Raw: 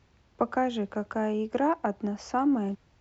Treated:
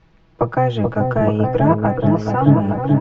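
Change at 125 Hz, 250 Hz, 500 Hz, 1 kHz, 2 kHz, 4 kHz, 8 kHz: +26.0 dB, +11.0 dB, +12.0 dB, +9.5 dB, +8.5 dB, +7.0 dB, no reading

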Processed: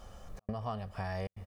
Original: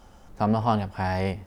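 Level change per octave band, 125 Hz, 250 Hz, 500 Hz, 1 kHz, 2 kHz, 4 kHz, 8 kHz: -11.5 dB, -16.5 dB, -12.0 dB, -15.0 dB, -11.5 dB, -12.0 dB, no reading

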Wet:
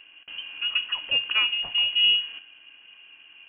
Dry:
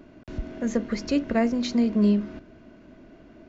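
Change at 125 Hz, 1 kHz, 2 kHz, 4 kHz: under -25 dB, -5.5 dB, +12.5 dB, +21.5 dB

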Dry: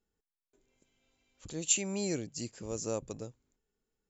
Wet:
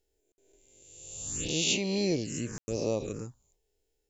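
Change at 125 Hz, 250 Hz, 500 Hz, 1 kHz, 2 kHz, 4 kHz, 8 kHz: +6.0 dB, +5.5 dB, +5.5 dB, +2.0 dB, +7.5 dB, +9.0 dB, no reading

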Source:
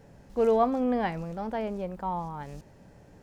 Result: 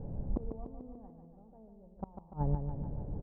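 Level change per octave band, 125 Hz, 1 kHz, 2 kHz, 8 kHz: +3.0 dB, -18.0 dB, under -30 dB, no reading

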